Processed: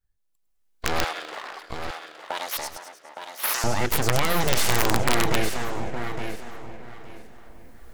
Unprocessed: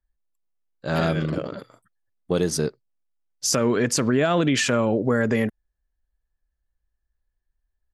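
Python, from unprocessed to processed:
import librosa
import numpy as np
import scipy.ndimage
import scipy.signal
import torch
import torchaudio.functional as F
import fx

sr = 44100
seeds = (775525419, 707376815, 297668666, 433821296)

y = fx.recorder_agc(x, sr, target_db=-13.0, rise_db_per_s=12.0, max_gain_db=30)
y = fx.high_shelf(y, sr, hz=3300.0, db=3.5)
y = fx.echo_split(y, sr, split_hz=1900.0, low_ms=457, high_ms=104, feedback_pct=52, wet_db=-11.5)
y = np.abs(y)
y = fx.highpass(y, sr, hz=850.0, slope=12, at=(1.04, 3.64))
y = fx.echo_feedback(y, sr, ms=864, feedback_pct=20, wet_db=-8.0)
y = (np.mod(10.0 ** (9.5 / 20.0) * y + 1.0, 2.0) - 1.0) / 10.0 ** (9.5 / 20.0)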